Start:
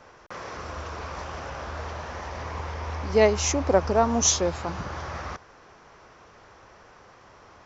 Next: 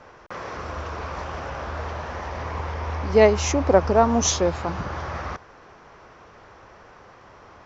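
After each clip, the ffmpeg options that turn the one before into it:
-af "lowpass=f=3400:p=1,volume=1.58"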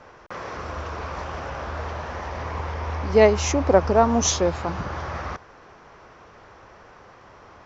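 -af anull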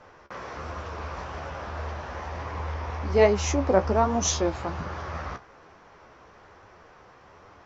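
-af "flanger=delay=9.6:depth=6.8:regen=43:speed=1.2:shape=triangular"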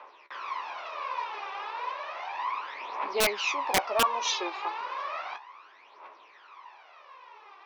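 -af "aphaser=in_gain=1:out_gain=1:delay=2.6:decay=0.66:speed=0.33:type=triangular,highpass=f=460:w=0.5412,highpass=f=460:w=1.3066,equalizer=f=490:t=q:w=4:g=-9,equalizer=f=710:t=q:w=4:g=-5,equalizer=f=1000:t=q:w=4:g=8,equalizer=f=1500:t=q:w=4:g=-5,equalizer=f=2500:t=q:w=4:g=8,equalizer=f=3700:t=q:w=4:g=5,lowpass=f=4800:w=0.5412,lowpass=f=4800:w=1.3066,aeval=exprs='(mod(4.47*val(0)+1,2)-1)/4.47':c=same,volume=0.794"

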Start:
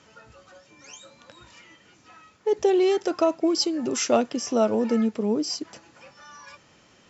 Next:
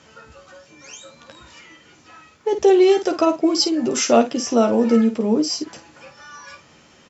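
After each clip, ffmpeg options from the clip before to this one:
-af "aecho=1:1:13|52:0.473|0.316,volume=1.68"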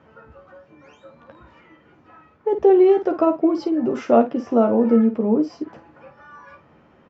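-af "lowpass=1300"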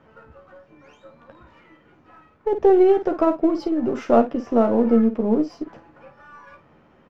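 -af "aeval=exprs='if(lt(val(0),0),0.708*val(0),val(0))':c=same"

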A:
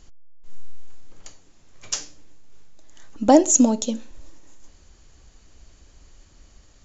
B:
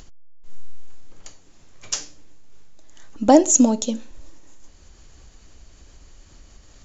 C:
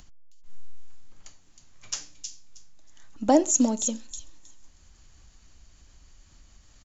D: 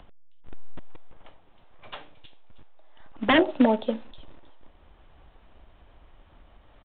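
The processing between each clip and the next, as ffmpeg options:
-af "acompressor=mode=upward:threshold=0.00891:ratio=2.5,volume=1.12"
-filter_complex "[0:a]acrossover=split=340|570|2800[s0][s1][s2][s3];[s1]aeval=exprs='sgn(val(0))*max(abs(val(0))-0.00708,0)':c=same[s4];[s3]aecho=1:1:316|632|948:0.562|0.0956|0.0163[s5];[s0][s4][s2][s5]amix=inputs=4:normalize=0,volume=0.473"
-filter_complex "[0:a]acrossover=split=500|860[s0][s1][s2];[s0]acrusher=bits=3:mode=log:mix=0:aa=0.000001[s3];[s1]aeval=exprs='0.141*sin(PI/2*3.98*val(0)/0.141)':c=same[s4];[s3][s4][s2]amix=inputs=3:normalize=0,aresample=8000,aresample=44100"

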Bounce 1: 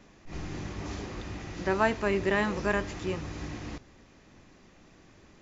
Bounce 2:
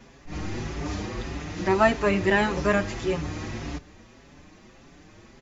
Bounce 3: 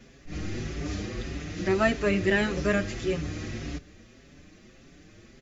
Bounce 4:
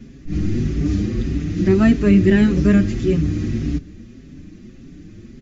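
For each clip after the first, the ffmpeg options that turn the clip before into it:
-filter_complex "[0:a]asplit=2[s0][s1];[s1]adelay=5.7,afreqshift=1.7[s2];[s0][s2]amix=inputs=2:normalize=1,volume=2.66"
-af "equalizer=f=930:w=2.5:g=-13.5,volume=0.891"
-af "lowshelf=f=400:t=q:w=1.5:g=12,volume=1.12"

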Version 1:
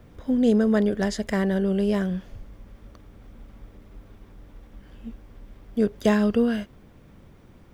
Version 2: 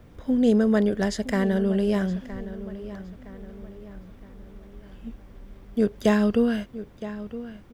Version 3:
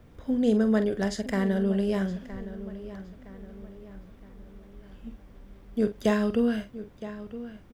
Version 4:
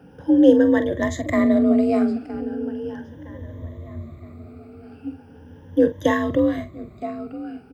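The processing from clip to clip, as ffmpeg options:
-filter_complex "[0:a]asplit=2[s0][s1];[s1]adelay=966,lowpass=f=3400:p=1,volume=0.2,asplit=2[s2][s3];[s3]adelay=966,lowpass=f=3400:p=1,volume=0.44,asplit=2[s4][s5];[s5]adelay=966,lowpass=f=3400:p=1,volume=0.44,asplit=2[s6][s7];[s7]adelay=966,lowpass=f=3400:p=1,volume=0.44[s8];[s0][s2][s4][s6][s8]amix=inputs=5:normalize=0"
-filter_complex "[0:a]asplit=2[s0][s1];[s1]adelay=46,volume=0.266[s2];[s0][s2]amix=inputs=2:normalize=0,volume=0.668"
-af "afftfilt=real='re*pow(10,17/40*sin(2*PI*(1.1*log(max(b,1)*sr/1024/100)/log(2)-(0.38)*(pts-256)/sr)))':imag='im*pow(10,17/40*sin(2*PI*(1.1*log(max(b,1)*sr/1024/100)/log(2)-(0.38)*(pts-256)/sr)))':win_size=1024:overlap=0.75,afreqshift=48,highshelf=f=2600:g=-9.5,volume=1.88"

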